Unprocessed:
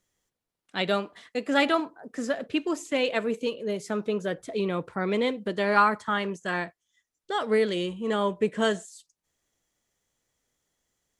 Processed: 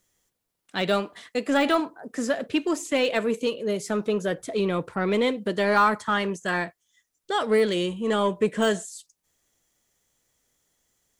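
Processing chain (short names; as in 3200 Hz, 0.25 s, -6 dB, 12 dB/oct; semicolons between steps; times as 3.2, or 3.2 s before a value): de-esser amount 85%; high shelf 7700 Hz +7.5 dB; in parallel at -5 dB: soft clip -23.5 dBFS, distortion -10 dB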